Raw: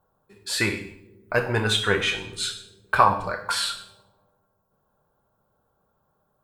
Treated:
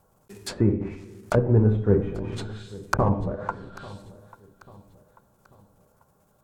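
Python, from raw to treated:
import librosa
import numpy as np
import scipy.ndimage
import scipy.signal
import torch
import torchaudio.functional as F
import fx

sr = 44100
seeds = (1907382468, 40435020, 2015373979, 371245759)

y = fx.block_float(x, sr, bits=3)
y = fx.env_lowpass_down(y, sr, base_hz=400.0, full_db=-23.0)
y = fx.curve_eq(y, sr, hz=(200.0, 4000.0, 7000.0), db=(0, -9, -1))
y = fx.echo_feedback(y, sr, ms=841, feedback_pct=43, wet_db=-20.0)
y = y * 10.0 ** (9.0 / 20.0)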